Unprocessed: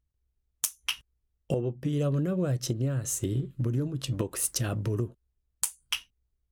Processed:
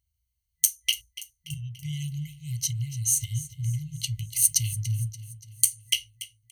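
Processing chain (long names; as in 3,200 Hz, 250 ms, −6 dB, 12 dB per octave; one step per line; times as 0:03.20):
EQ curve with evenly spaced ripples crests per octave 1.9, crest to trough 13 dB
brick-wall band-stop 160–2,000 Hz
high-pass filter 46 Hz
high-shelf EQ 3,500 Hz +8 dB
on a send: repeating echo 288 ms, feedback 51%, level −16 dB
on the sum: level −1 dB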